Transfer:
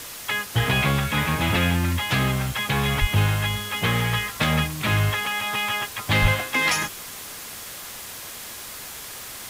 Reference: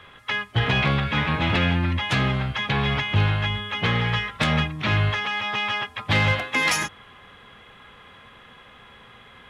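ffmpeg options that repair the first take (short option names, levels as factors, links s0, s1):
-filter_complex "[0:a]asplit=3[s0][s1][s2];[s0]afade=t=out:st=3:d=0.02[s3];[s1]highpass=f=140:w=0.5412,highpass=f=140:w=1.3066,afade=t=in:st=3:d=0.02,afade=t=out:st=3.12:d=0.02[s4];[s2]afade=t=in:st=3.12:d=0.02[s5];[s3][s4][s5]amix=inputs=3:normalize=0,asplit=3[s6][s7][s8];[s6]afade=t=out:st=6.21:d=0.02[s9];[s7]highpass=f=140:w=0.5412,highpass=f=140:w=1.3066,afade=t=in:st=6.21:d=0.02,afade=t=out:st=6.33:d=0.02[s10];[s8]afade=t=in:st=6.33:d=0.02[s11];[s9][s10][s11]amix=inputs=3:normalize=0,afwtdn=0.016"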